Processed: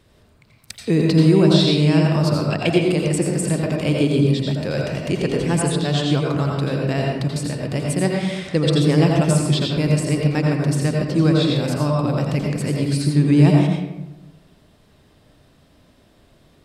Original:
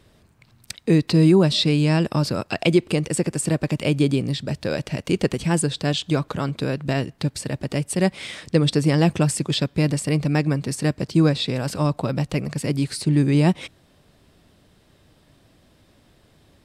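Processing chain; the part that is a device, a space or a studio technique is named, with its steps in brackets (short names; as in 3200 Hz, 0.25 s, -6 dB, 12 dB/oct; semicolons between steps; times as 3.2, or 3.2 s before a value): 5.09–5.49 high shelf 9800 Hz -5.5 dB; bathroom (reverb RT60 1.0 s, pre-delay 78 ms, DRR -1 dB); gain -1.5 dB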